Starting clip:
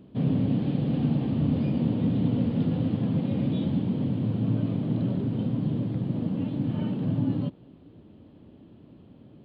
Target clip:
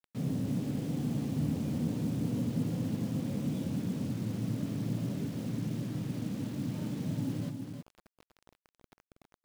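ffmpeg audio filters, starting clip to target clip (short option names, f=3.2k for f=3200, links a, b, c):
-af "highshelf=f=3.7k:g=-10,acrusher=bits=6:mix=0:aa=0.000001,aecho=1:1:322:0.501,volume=-8.5dB"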